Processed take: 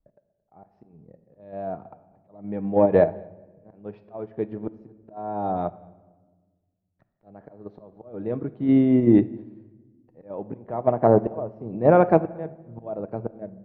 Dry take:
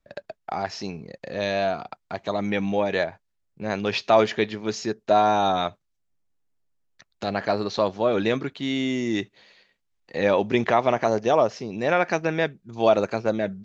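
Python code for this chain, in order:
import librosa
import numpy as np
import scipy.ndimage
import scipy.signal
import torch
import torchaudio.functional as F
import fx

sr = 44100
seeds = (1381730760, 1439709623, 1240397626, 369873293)

p1 = scipy.signal.sosfilt(scipy.signal.cheby1(2, 1.0, 710.0, 'lowpass', fs=sr, output='sos'), x)
p2 = fx.low_shelf(p1, sr, hz=230.0, db=7.0)
p3 = fx.auto_swell(p2, sr, attack_ms=696.0)
p4 = fx.level_steps(p3, sr, step_db=12)
p5 = p3 + (p4 * 10.0 ** (0.0 / 20.0))
p6 = fx.cheby_harmonics(p5, sr, harmonics=(3,), levels_db=(-28,), full_scale_db=-5.5)
p7 = p6 + fx.echo_single(p6, sr, ms=224, db=-22.5, dry=0)
p8 = fx.room_shoebox(p7, sr, seeds[0], volume_m3=1200.0, walls='mixed', distance_m=0.51)
p9 = fx.upward_expand(p8, sr, threshold_db=-38.0, expansion=1.5)
y = p9 * 10.0 ** (4.0 / 20.0)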